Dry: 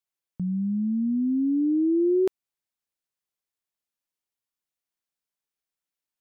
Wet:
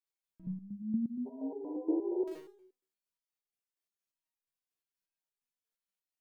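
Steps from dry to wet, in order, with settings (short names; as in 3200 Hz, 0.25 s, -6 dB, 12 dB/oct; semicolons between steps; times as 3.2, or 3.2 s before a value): spectral repair 1.28–2.21, 390–1000 Hz after; Schroeder reverb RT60 0.49 s, combs from 33 ms, DRR -2.5 dB; stepped resonator 8.5 Hz 76–410 Hz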